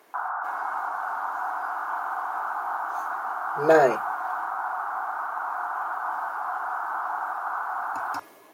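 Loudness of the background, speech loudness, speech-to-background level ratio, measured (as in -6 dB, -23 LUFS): -30.0 LUFS, -21.5 LUFS, 8.5 dB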